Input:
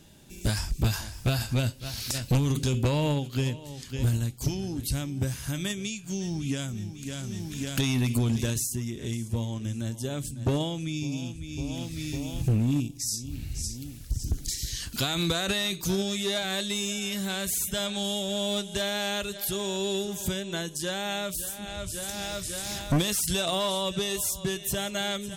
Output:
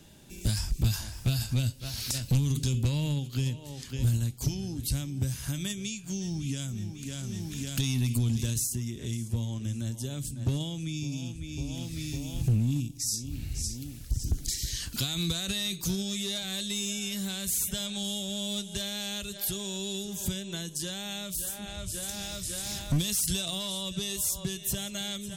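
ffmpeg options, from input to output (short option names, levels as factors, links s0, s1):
-filter_complex "[0:a]acrossover=split=230|3000[s0][s1][s2];[s1]acompressor=threshold=0.00708:ratio=5[s3];[s0][s3][s2]amix=inputs=3:normalize=0"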